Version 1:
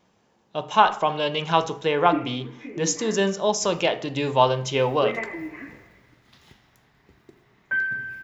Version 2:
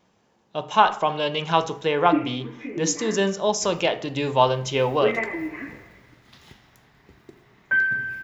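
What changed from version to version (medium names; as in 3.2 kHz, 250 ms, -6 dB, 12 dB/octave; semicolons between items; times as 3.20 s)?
background +4.0 dB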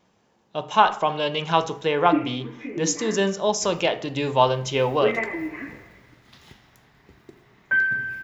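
no change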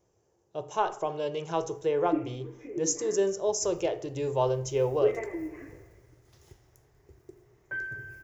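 master: add FFT filter 110 Hz 0 dB, 230 Hz -20 dB, 360 Hz 0 dB, 990 Hz -13 dB, 3.9 kHz -18 dB, 6 kHz -3 dB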